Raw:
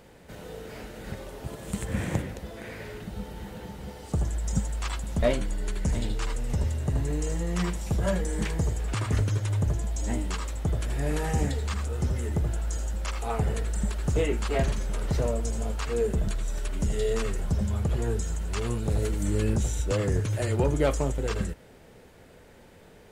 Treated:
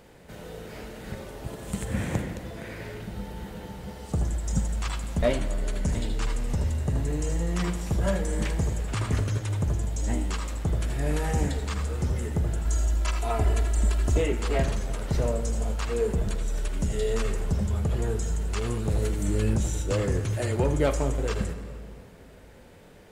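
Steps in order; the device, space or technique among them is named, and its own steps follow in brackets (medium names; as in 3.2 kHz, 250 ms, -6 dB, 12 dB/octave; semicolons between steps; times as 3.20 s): 12.65–14.18 s: comb 3 ms, depth 91%; saturated reverb return (on a send at -7 dB: reverberation RT60 2.0 s, pre-delay 36 ms + saturation -23.5 dBFS, distortion -13 dB)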